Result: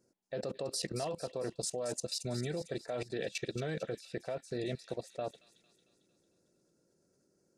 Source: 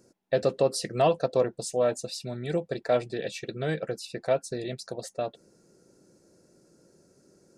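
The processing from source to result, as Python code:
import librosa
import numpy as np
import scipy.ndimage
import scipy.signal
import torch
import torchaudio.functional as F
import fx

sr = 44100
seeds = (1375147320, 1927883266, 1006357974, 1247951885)

p1 = fx.level_steps(x, sr, step_db=19)
p2 = p1 + fx.echo_wet_highpass(p1, sr, ms=225, feedback_pct=55, hz=3000.0, wet_db=-9.0, dry=0)
y = p2 * librosa.db_to_amplitude(2.0)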